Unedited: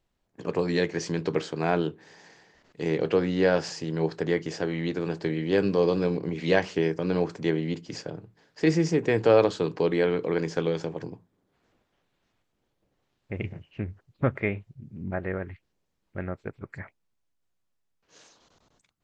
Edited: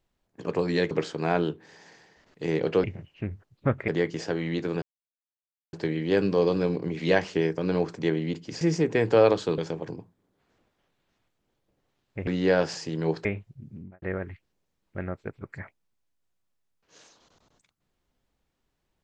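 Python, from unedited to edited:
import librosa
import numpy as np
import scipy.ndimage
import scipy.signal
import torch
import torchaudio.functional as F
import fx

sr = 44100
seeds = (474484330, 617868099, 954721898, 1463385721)

y = fx.edit(x, sr, fx.cut(start_s=0.91, length_s=0.38),
    fx.swap(start_s=3.22, length_s=0.98, other_s=13.41, other_length_s=1.04),
    fx.insert_silence(at_s=5.14, length_s=0.91),
    fx.cut(start_s=8.02, length_s=0.72),
    fx.cut(start_s=9.71, length_s=1.01),
    fx.fade_out_span(start_s=14.95, length_s=0.27, curve='qua'), tone=tone)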